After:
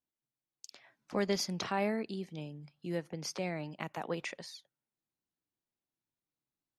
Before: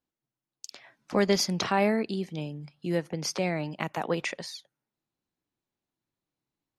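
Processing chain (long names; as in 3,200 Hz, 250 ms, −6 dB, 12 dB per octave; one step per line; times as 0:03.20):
level −8 dB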